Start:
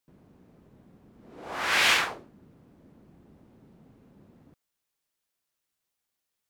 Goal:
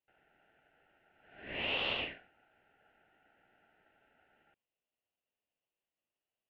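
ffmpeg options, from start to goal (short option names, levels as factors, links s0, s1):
-filter_complex "[0:a]highpass=f=380:w=0.5412,highpass=f=380:w=1.3066,equalizer=f=390:t=q:w=4:g=-4,equalizer=f=560:t=q:w=4:g=-9,equalizer=f=1100:t=q:w=4:g=-5,equalizer=f=1700:t=q:w=4:g=7,lowpass=f=2000:w=0.5412,lowpass=f=2000:w=1.3066,aeval=exprs='val(0)*sin(2*PI*1100*n/s)':c=same,acrossover=split=710|1500[s0][s1][s2];[s0]acompressor=threshold=0.00631:ratio=4[s3];[s1]acompressor=threshold=0.00316:ratio=4[s4];[s2]acompressor=threshold=0.02:ratio=4[s5];[s3][s4][s5]amix=inputs=3:normalize=0"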